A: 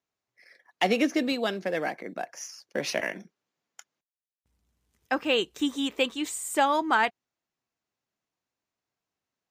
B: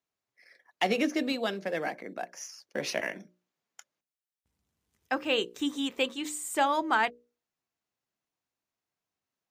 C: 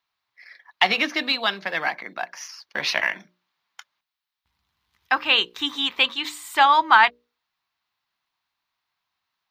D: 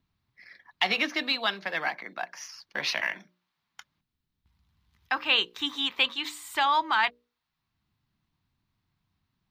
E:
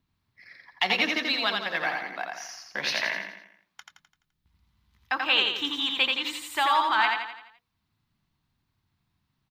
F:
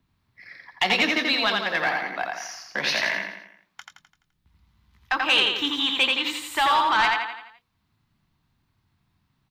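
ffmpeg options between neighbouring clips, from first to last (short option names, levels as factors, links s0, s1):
-af "bandreject=f=60:t=h:w=6,bandreject=f=120:t=h:w=6,bandreject=f=180:t=h:w=6,bandreject=f=240:t=h:w=6,bandreject=f=300:t=h:w=6,bandreject=f=360:t=h:w=6,bandreject=f=420:t=h:w=6,bandreject=f=480:t=h:w=6,bandreject=f=540:t=h:w=6,bandreject=f=600:t=h:w=6,volume=0.75"
-af "equalizer=f=125:t=o:w=1:g=-3,equalizer=f=250:t=o:w=1:g=-6,equalizer=f=500:t=o:w=1:g=-10,equalizer=f=1000:t=o:w=1:g=10,equalizer=f=2000:t=o:w=1:g=4,equalizer=f=4000:t=o:w=1:g=11,equalizer=f=8000:t=o:w=1:g=-11,volume=1.78"
-filter_complex "[0:a]acrossover=split=240|2500[s0][s1][s2];[s0]acompressor=mode=upward:threshold=0.00282:ratio=2.5[s3];[s1]alimiter=limit=0.237:level=0:latency=1[s4];[s3][s4][s2]amix=inputs=3:normalize=0,volume=0.596"
-af "aecho=1:1:85|170|255|340|425|510:0.668|0.321|0.154|0.0739|0.0355|0.017"
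-filter_complex "[0:a]acrossover=split=160|2900[s0][s1][s2];[s1]asoftclip=type=tanh:threshold=0.0841[s3];[s2]flanger=delay=20:depth=7.7:speed=0.99[s4];[s0][s3][s4]amix=inputs=3:normalize=0,volume=2"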